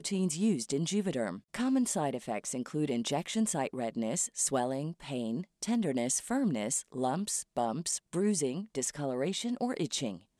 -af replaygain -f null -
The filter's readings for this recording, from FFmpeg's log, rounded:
track_gain = +13.8 dB
track_peak = 0.090